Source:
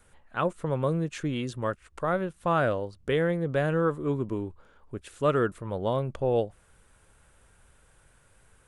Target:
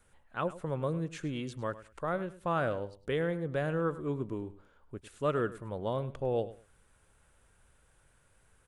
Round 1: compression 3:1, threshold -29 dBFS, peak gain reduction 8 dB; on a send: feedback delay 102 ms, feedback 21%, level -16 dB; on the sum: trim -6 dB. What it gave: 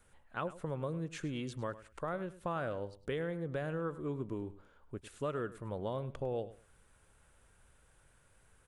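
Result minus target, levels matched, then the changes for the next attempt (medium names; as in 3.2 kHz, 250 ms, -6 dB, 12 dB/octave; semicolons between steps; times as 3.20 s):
compression: peak gain reduction +8 dB
remove: compression 3:1, threshold -29 dBFS, peak gain reduction 8 dB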